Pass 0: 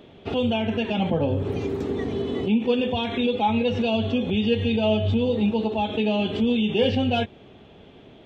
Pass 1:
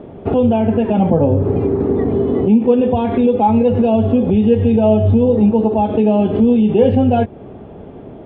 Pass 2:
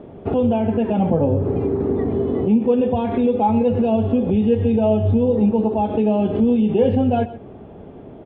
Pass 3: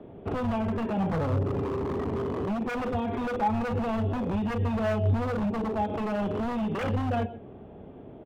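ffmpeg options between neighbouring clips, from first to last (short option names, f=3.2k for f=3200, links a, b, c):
-filter_complex "[0:a]lowpass=1k,asplit=2[a][b];[b]acompressor=threshold=-31dB:ratio=6,volume=1.5dB[c];[a][c]amix=inputs=2:normalize=0,volume=7.5dB"
-af "aecho=1:1:127:0.158,volume=-4.5dB"
-filter_complex "[0:a]asplit=2[a][b];[b]adelay=31,volume=-12.5dB[c];[a][c]amix=inputs=2:normalize=0,acrossover=split=180|690|780[d][e][f][g];[e]aeval=exprs='0.0891*(abs(mod(val(0)/0.0891+3,4)-2)-1)':c=same[h];[d][h][f][g]amix=inputs=4:normalize=0,volume=-7dB"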